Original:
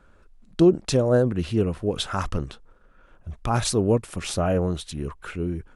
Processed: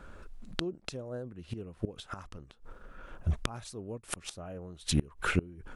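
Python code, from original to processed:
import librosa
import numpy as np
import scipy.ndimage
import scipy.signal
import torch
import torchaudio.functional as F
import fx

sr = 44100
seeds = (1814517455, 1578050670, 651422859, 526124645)

y = fx.gate_flip(x, sr, shuts_db=-20.0, range_db=-27)
y = y * librosa.db_to_amplitude(6.5)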